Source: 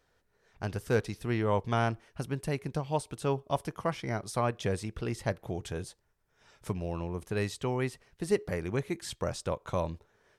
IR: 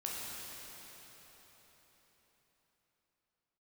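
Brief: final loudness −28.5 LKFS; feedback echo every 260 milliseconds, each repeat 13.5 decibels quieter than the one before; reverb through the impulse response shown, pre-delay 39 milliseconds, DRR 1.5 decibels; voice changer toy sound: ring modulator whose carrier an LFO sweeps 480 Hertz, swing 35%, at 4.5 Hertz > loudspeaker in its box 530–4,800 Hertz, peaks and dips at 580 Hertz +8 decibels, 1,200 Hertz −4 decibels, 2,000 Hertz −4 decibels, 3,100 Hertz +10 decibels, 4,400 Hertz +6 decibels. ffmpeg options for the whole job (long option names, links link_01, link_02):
-filter_complex "[0:a]aecho=1:1:260|520:0.211|0.0444,asplit=2[link_01][link_02];[1:a]atrim=start_sample=2205,adelay=39[link_03];[link_02][link_03]afir=irnorm=-1:irlink=0,volume=-4dB[link_04];[link_01][link_04]amix=inputs=2:normalize=0,aeval=exprs='val(0)*sin(2*PI*480*n/s+480*0.35/4.5*sin(2*PI*4.5*n/s))':channel_layout=same,highpass=530,equalizer=frequency=580:width_type=q:width=4:gain=8,equalizer=frequency=1200:width_type=q:width=4:gain=-4,equalizer=frequency=2000:width_type=q:width=4:gain=-4,equalizer=frequency=3100:width_type=q:width=4:gain=10,equalizer=frequency=4400:width_type=q:width=4:gain=6,lowpass=frequency=4800:width=0.5412,lowpass=frequency=4800:width=1.3066,volume=6.5dB"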